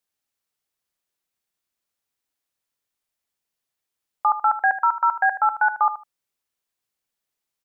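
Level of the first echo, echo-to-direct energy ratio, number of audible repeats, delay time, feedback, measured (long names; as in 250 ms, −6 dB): −12.5 dB, −12.5 dB, 2, 77 ms, 18%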